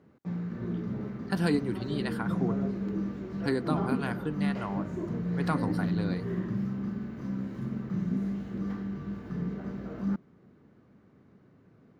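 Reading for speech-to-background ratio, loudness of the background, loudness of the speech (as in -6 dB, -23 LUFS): -0.5 dB, -33.5 LUFS, -34.0 LUFS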